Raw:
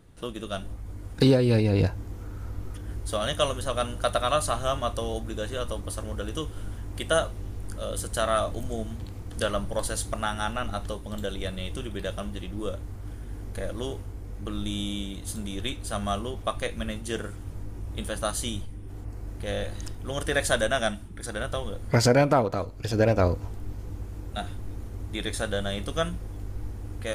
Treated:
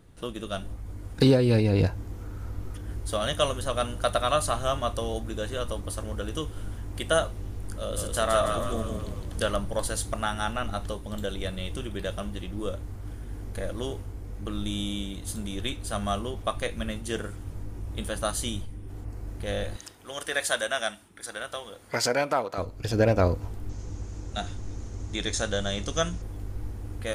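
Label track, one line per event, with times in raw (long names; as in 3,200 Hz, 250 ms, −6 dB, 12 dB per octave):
7.770000	9.560000	echo with shifted repeats 162 ms, feedback 50%, per repeat −30 Hz, level −4.5 dB
19.770000	22.580000	high-pass filter 860 Hz 6 dB per octave
23.690000	26.220000	low-pass with resonance 6,500 Hz, resonance Q 4.1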